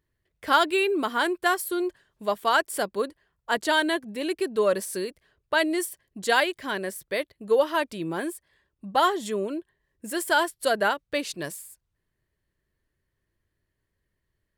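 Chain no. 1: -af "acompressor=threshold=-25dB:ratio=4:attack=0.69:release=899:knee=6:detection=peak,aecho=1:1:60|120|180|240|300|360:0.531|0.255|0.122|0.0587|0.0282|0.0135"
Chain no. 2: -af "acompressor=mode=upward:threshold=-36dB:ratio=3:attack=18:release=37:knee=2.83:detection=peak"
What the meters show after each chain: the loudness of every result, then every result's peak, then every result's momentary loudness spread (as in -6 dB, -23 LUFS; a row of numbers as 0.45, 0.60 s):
-32.5, -26.0 LUFS; -17.5, -8.0 dBFS; 8, 12 LU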